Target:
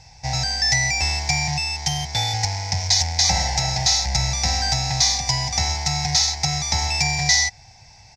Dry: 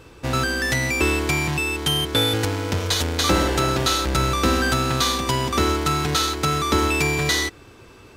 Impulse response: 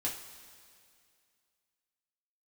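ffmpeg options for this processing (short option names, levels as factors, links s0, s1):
-af "firequalizer=gain_entry='entry(150,0);entry(310,-27);entry(440,-23);entry(780,10);entry(1200,-23);entry(2000,4);entry(3000,-10);entry(5300,15);entry(9900,-16)':delay=0.05:min_phase=1"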